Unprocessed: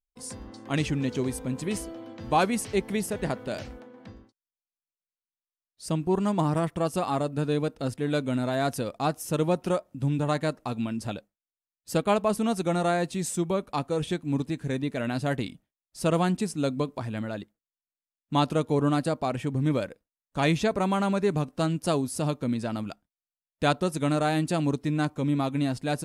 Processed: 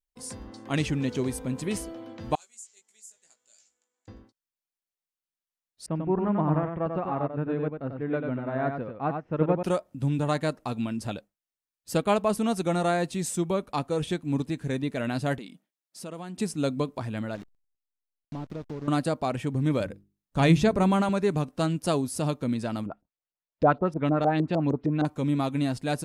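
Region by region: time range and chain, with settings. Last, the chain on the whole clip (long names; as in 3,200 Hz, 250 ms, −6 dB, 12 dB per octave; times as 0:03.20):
0:02.35–0:04.08: mu-law and A-law mismatch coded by mu + resonant band-pass 7,200 Hz, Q 13 + double-tracking delay 18 ms −4.5 dB
0:05.86–0:09.63: low-pass filter 2,100 Hz 24 dB per octave + single-tap delay 93 ms −4 dB + expander for the loud parts, over −35 dBFS
0:15.38–0:16.37: linear-phase brick-wall high-pass 150 Hz + downward compressor 2.5 to 1, threshold −41 dBFS
0:17.35–0:18.88: linear delta modulator 32 kbit/s, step −39 dBFS + downward compressor 3 to 1, threshold −34 dBFS + slack as between gear wheels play −35.5 dBFS
0:19.80–0:21.09: low-shelf EQ 250 Hz +10 dB + mains-hum notches 50/100/150/200/250/300/350/400 Hz
0:22.86–0:25.05: high-shelf EQ 2,200 Hz −10 dB + auto-filter low-pass saw up 6.5 Hz 420–5,800 Hz
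whole clip: no processing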